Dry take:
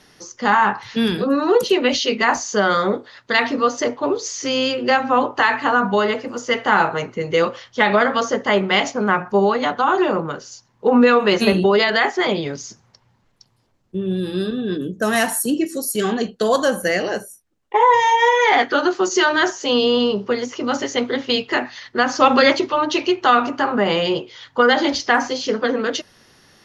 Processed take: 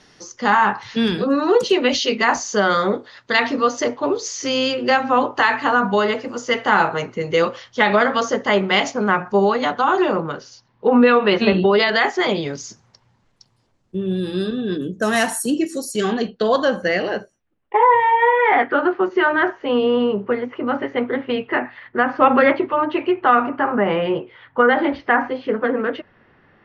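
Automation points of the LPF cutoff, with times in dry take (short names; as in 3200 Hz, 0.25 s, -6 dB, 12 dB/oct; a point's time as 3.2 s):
LPF 24 dB/oct
9.88 s 8100 Hz
10.88 s 4000 Hz
11.66 s 4000 Hz
12.21 s 10000 Hz
15.81 s 10000 Hz
16.3 s 4500 Hz
16.96 s 4500 Hz
17.98 s 2300 Hz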